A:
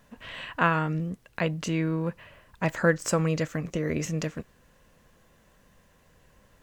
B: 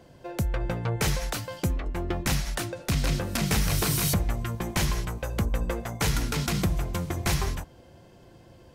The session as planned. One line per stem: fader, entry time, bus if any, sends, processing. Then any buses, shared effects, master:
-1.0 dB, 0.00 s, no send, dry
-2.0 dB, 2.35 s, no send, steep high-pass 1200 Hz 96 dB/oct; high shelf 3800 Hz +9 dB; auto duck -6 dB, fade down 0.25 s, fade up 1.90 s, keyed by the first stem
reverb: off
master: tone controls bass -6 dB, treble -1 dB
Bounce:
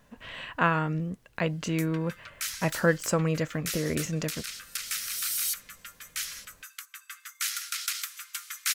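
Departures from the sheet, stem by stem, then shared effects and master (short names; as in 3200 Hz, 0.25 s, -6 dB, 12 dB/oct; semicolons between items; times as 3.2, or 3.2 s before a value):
stem B: entry 2.35 s -> 1.40 s; master: missing tone controls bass -6 dB, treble -1 dB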